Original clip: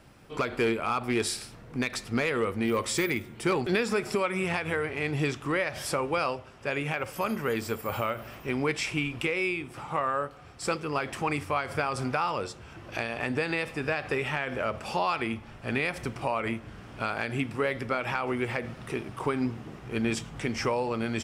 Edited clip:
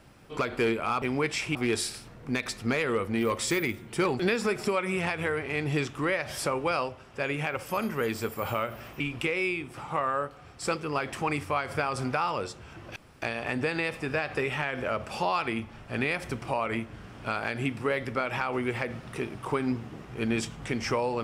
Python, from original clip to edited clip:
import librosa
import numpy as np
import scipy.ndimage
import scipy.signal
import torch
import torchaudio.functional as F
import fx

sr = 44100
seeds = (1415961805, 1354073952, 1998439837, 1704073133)

y = fx.edit(x, sr, fx.move(start_s=8.47, length_s=0.53, to_s=1.02),
    fx.insert_room_tone(at_s=12.96, length_s=0.26), tone=tone)